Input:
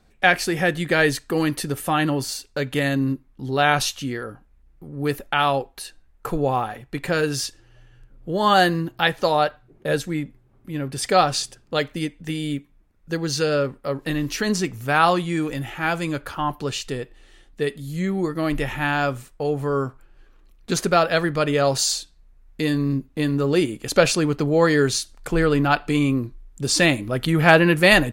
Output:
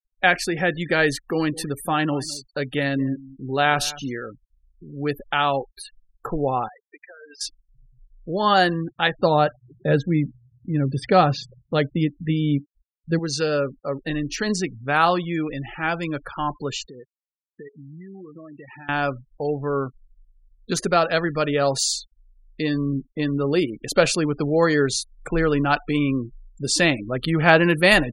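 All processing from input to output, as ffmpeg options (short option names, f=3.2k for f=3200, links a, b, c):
-filter_complex "[0:a]asettb=1/sr,asplit=3[a][b][c];[a]atrim=end=1.314[d];[b]atrim=start=1.31:end=4.23,asetpts=PTS-STARTPTS,afade=t=in:d=0.004:c=qsin,afade=t=out:st=2.916:d=0.004:c=qsin,bandreject=f=50:t=h:w=6,bandreject=f=100:t=h:w=6,aecho=1:1:211:0.119,atrim=end_sample=128772[e];[c]atrim=start=4.226[f];[d][e]acrossfade=d=0.004:c1=hsin:c2=qsin[g];[g][f]acrossfade=d=0.004:c1=qsin:c2=hsin,asettb=1/sr,asplit=3[h][i][j];[h]atrim=end=6.684[k];[i]atrim=start=6.68:end=7.41,asetpts=PTS-STARTPTS,afade=t=in:d=0.004:c=qsin,afade=t=out:st=0.726:d=0.004:c=qsin,highpass=660,aemphasis=mode=reproduction:type=50fm,acompressor=threshold=-37dB:ratio=12:attack=3.2:release=140:knee=1:detection=peak[l];[j]atrim=start=7.406[m];[k][l]acrossfade=d=0.004:c1=hsin:c2=qsin[n];[n][m]acrossfade=d=0.004:c1=qsin:c2=hsin,asettb=1/sr,asplit=3[o][p][q];[o]atrim=end=9.194[r];[p]atrim=start=9.19:end=13.19,asetpts=PTS-STARTPTS,afade=t=in:d=0.004:c=qsin,afade=t=out:st=3.996:d=0.004:c=qsin,acrossover=split=3900[s][t];[t]acompressor=threshold=-39dB:ratio=4:attack=1:release=60[u];[s][u]amix=inputs=2:normalize=0,highpass=43,equalizer=f=90:w=0.36:g=12[v];[q]atrim=start=13.186[w];[r][v]acrossfade=d=0.004:c1=hsin:c2=qsin[x];[x][w]acrossfade=d=0.004:c1=qsin:c2=hsin,asettb=1/sr,asplit=3[y][z][aa];[y]atrim=end=16.854[ab];[z]atrim=start=16.85:end=18.89,asetpts=PTS-STARTPTS,afade=t=in:d=0.004:c=qsin,afade=t=out:st=2.036:d=0.004:c=qsin,lowshelf=f=88:g=-10,acompressor=threshold=-35dB:ratio=10:attack=3.2:release=140:knee=1:detection=peak,highpass=60[ac];[aa]atrim=start=18.886[ad];[ab][ac]acrossfade=d=0.004:c1=hsin:c2=qsin[ae];[ae][ad]acrossfade=d=0.004:c1=qsin:c2=hsin,afftfilt=real='re*gte(hypot(re,im),0.0251)':imag='im*gte(hypot(re,im),0.0251)':win_size=1024:overlap=0.75,equalizer=f=77:w=1.7:g=-9,volume=-1dB"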